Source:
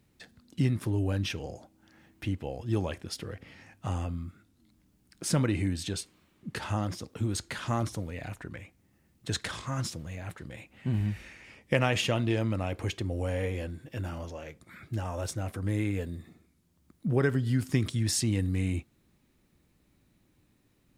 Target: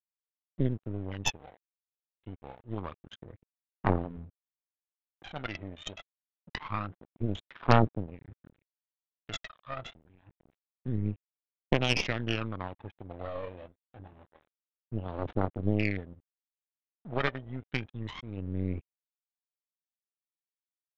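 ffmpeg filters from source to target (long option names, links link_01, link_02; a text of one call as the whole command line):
ffmpeg -i in.wav -af "aemphasis=mode=production:type=bsi,afwtdn=0.0158,highshelf=frequency=2900:gain=3.5,alimiter=limit=-14.5dB:level=0:latency=1:release=336,adynamicsmooth=sensitivity=7.5:basefreq=1600,aphaser=in_gain=1:out_gain=1:delay=1.7:decay=0.79:speed=0.26:type=triangular,aresample=8000,aeval=exprs='sgn(val(0))*max(abs(val(0))-0.00447,0)':channel_layout=same,aresample=44100,aeval=exprs='0.473*(cos(1*acos(clip(val(0)/0.473,-1,1)))-cos(1*PI/2))+0.0596*(cos(3*acos(clip(val(0)/0.473,-1,1)))-cos(3*PI/2))+0.119*(cos(6*acos(clip(val(0)/0.473,-1,1)))-cos(6*PI/2))':channel_layout=same" out.wav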